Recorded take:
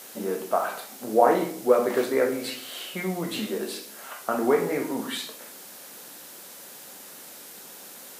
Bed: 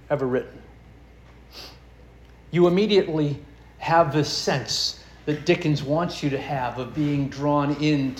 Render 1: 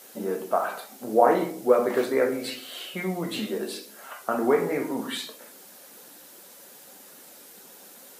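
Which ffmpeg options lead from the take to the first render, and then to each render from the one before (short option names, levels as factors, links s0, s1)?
-af "afftdn=nr=6:nf=-45"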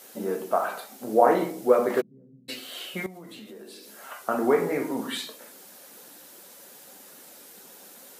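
-filter_complex "[0:a]asplit=3[s0][s1][s2];[s0]afade=t=out:st=2:d=0.02[s3];[s1]asuperpass=centerf=160:order=4:qfactor=3.5,afade=t=in:st=2:d=0.02,afade=t=out:st=2.48:d=0.02[s4];[s2]afade=t=in:st=2.48:d=0.02[s5];[s3][s4][s5]amix=inputs=3:normalize=0,asettb=1/sr,asplit=3[s6][s7][s8];[s6]atrim=end=3.064[s9];[s7]atrim=start=3.06:end=4,asetpts=PTS-STARTPTS,afade=t=in:d=0.004:c=qsin,afade=t=out:st=0.936:d=0.004:c=qsin,acompressor=threshold=0.00794:ratio=5:attack=3.2:release=140:knee=1:detection=peak[s10];[s8]atrim=start=3.996[s11];[s9][s10]acrossfade=d=0.004:c1=hsin:c2=qsin[s12];[s12][s11]acrossfade=d=0.004:c1=qsin:c2=hsin"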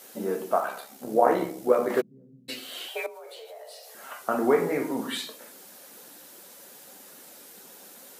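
-filter_complex "[0:a]asettb=1/sr,asplit=3[s0][s1][s2];[s0]atrim=end=0.604[s3];[s1]atrim=start=0.6:end=1.9,asetpts=PTS-STARTPTS,afade=t=in:d=0.004:c=qsin,afade=t=out:st=1.296:d=0.004:c=qsin,tremolo=f=69:d=0.462[s4];[s2]atrim=start=1.896[s5];[s3][s4]acrossfade=d=0.004:c1=hsin:c2=qsin[s6];[s6][s5]acrossfade=d=0.004:c1=qsin:c2=hsin,asettb=1/sr,asplit=3[s7][s8][s9];[s7]atrim=end=2.884[s10];[s8]atrim=start=2.88:end=3.95,asetpts=PTS-STARTPTS,afade=t=in:d=0.004:c=qsin,afade=t=out:st=1.066:d=0.004:c=qsin,afreqshift=230[s11];[s9]atrim=start=3.946[s12];[s10][s11]acrossfade=d=0.004:c1=hsin:c2=qsin[s13];[s13][s12]acrossfade=d=0.004:c1=qsin:c2=hsin"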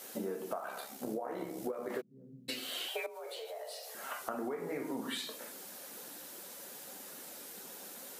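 -af "alimiter=limit=0.15:level=0:latency=1:release=353,acompressor=threshold=0.0178:ratio=8"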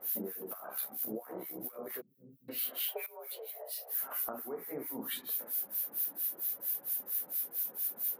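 -filter_complex "[0:a]aexciter=amount=11.7:drive=4.4:freq=11000,acrossover=split=1400[s0][s1];[s0]aeval=exprs='val(0)*(1-1/2+1/2*cos(2*PI*4.4*n/s))':c=same[s2];[s1]aeval=exprs='val(0)*(1-1/2-1/2*cos(2*PI*4.4*n/s))':c=same[s3];[s2][s3]amix=inputs=2:normalize=0"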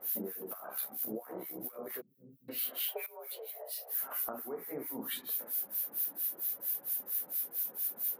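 -af anull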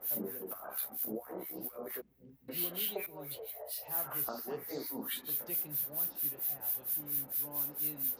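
-filter_complex "[1:a]volume=0.0376[s0];[0:a][s0]amix=inputs=2:normalize=0"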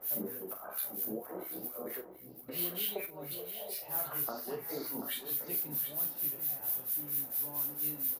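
-filter_complex "[0:a]asplit=2[s0][s1];[s1]adelay=40,volume=0.355[s2];[s0][s2]amix=inputs=2:normalize=0,aecho=1:1:734:0.299"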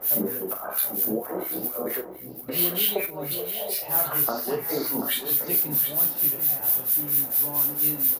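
-af "volume=3.98"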